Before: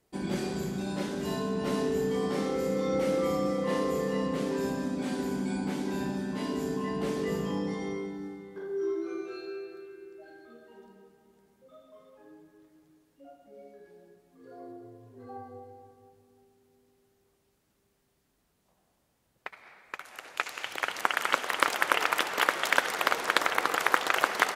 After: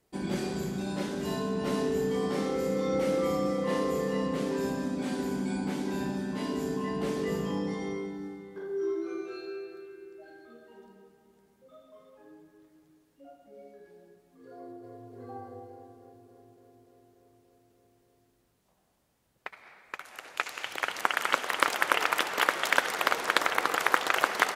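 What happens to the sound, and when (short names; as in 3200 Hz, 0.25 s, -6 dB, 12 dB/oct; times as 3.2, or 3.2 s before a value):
14.54–15.11 echo throw 0.29 s, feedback 80%, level -3.5 dB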